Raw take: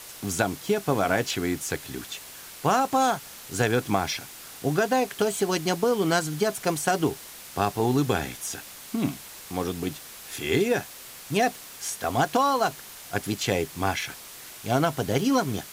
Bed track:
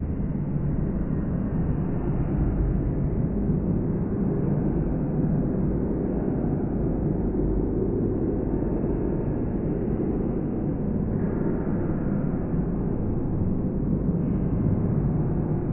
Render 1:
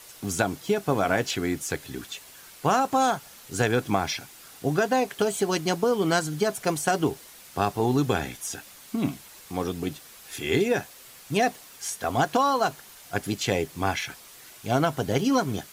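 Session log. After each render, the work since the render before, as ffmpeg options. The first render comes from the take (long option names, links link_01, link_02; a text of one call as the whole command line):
ffmpeg -i in.wav -af "afftdn=noise_reduction=6:noise_floor=-44" out.wav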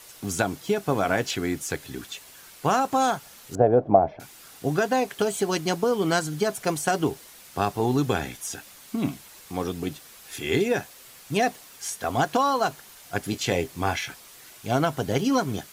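ffmpeg -i in.wav -filter_complex "[0:a]asettb=1/sr,asplit=3[link_01][link_02][link_03];[link_01]atrim=end=3.554[link_04];[link_02]atrim=start=3.55:end=4.2,asetpts=PTS-STARTPTS,afade=type=in:duration=0.004:curve=qsin,afade=type=out:start_time=0.646:duration=0.004:curve=qsin,lowpass=frequency=640:width_type=q:width=5.2[link_05];[link_03]atrim=start=4.196[link_06];[link_04][link_05]acrossfade=duration=0.004:curve1=hsin:curve2=qsin[link_07];[link_07][link_06]acrossfade=duration=0.004:curve1=qsin:curve2=hsin,asettb=1/sr,asplit=3[link_08][link_09][link_10];[link_08]atrim=end=13.304[link_11];[link_09]atrim=start=13.3:end=14.11,asetpts=PTS-STARTPTS,afade=type=in:duration=0.004:curve=qsin,afade=type=out:start_time=0.806:duration=0.004:curve=qsin,asplit=2[link_12][link_13];[link_13]adelay=23,volume=-10.5dB[link_14];[link_12][link_14]amix=inputs=2:normalize=0,atrim=end_sample=35721[link_15];[link_10]atrim=start=14.106[link_16];[link_11][link_15]acrossfade=duration=0.004:curve1=hsin:curve2=qsin[link_17];[link_17][link_16]acrossfade=duration=0.004:curve1=qsin:curve2=hsin" out.wav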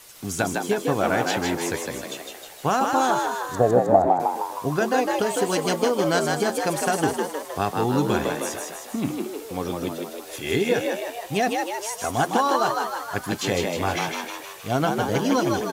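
ffmpeg -i in.wav -filter_complex "[0:a]asplit=9[link_01][link_02][link_03][link_04][link_05][link_06][link_07][link_08][link_09];[link_02]adelay=156,afreqshift=75,volume=-3.5dB[link_10];[link_03]adelay=312,afreqshift=150,volume=-8.2dB[link_11];[link_04]adelay=468,afreqshift=225,volume=-13dB[link_12];[link_05]adelay=624,afreqshift=300,volume=-17.7dB[link_13];[link_06]adelay=780,afreqshift=375,volume=-22.4dB[link_14];[link_07]adelay=936,afreqshift=450,volume=-27.2dB[link_15];[link_08]adelay=1092,afreqshift=525,volume=-31.9dB[link_16];[link_09]adelay=1248,afreqshift=600,volume=-36.6dB[link_17];[link_01][link_10][link_11][link_12][link_13][link_14][link_15][link_16][link_17]amix=inputs=9:normalize=0" out.wav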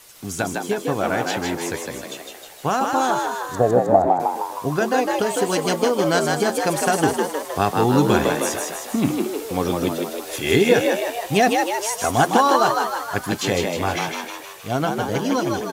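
ffmpeg -i in.wav -af "dynaudnorm=framelen=380:gausssize=17:maxgain=11.5dB" out.wav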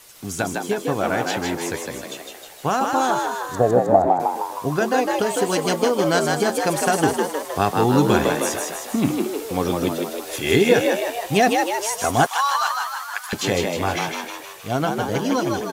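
ffmpeg -i in.wav -filter_complex "[0:a]asettb=1/sr,asplit=3[link_01][link_02][link_03];[link_01]atrim=end=12.264[link_04];[link_02]atrim=start=12.26:end=13.33,asetpts=PTS-STARTPTS,afade=type=in:duration=0.004:curve=qsin,afade=type=out:start_time=1.066:duration=0.004:curve=qsin,highpass=frequency=1000:width=0.5412,highpass=frequency=1000:width=1.3066[link_05];[link_03]atrim=start=13.326[link_06];[link_04][link_05]acrossfade=duration=0.004:curve1=hsin:curve2=qsin[link_07];[link_07][link_06]acrossfade=duration=0.004:curve1=qsin:curve2=hsin" out.wav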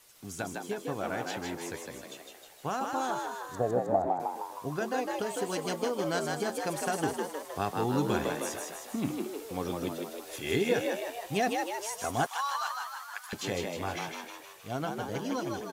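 ffmpeg -i in.wav -af "volume=-12dB" out.wav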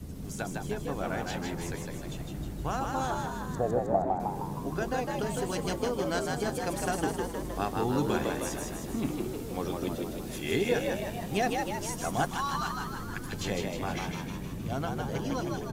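ffmpeg -i in.wav -i bed.wav -filter_complex "[1:a]volume=-13.5dB[link_01];[0:a][link_01]amix=inputs=2:normalize=0" out.wav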